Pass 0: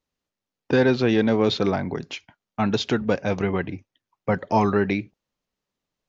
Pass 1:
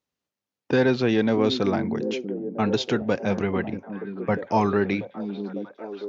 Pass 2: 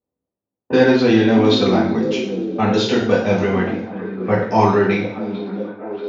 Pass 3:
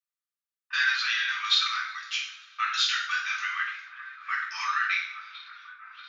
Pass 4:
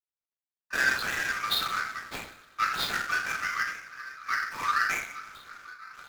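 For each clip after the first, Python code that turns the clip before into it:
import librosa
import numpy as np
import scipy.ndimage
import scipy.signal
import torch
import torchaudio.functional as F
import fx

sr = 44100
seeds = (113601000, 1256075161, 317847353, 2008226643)

y1 = scipy.signal.sosfilt(scipy.signal.butter(2, 85.0, 'highpass', fs=sr, output='sos'), x)
y1 = fx.echo_stepped(y1, sr, ms=639, hz=250.0, octaves=0.7, feedback_pct=70, wet_db=-5.5)
y1 = F.gain(torch.from_numpy(y1), -1.5).numpy()
y2 = fx.rev_double_slope(y1, sr, seeds[0], early_s=0.59, late_s=4.6, knee_db=-27, drr_db=-5.5)
y2 = fx.env_lowpass(y2, sr, base_hz=590.0, full_db=-18.5)
y2 = F.gain(torch.from_numpy(y2), 1.0).numpy()
y3 = scipy.signal.sosfilt(scipy.signal.cheby1(6, 1.0, 1200.0, 'highpass', fs=sr, output='sos'), y2)
y4 = scipy.ndimage.median_filter(y3, 15, mode='constant')
y4 = F.gain(torch.from_numpy(y4), 3.0).numpy()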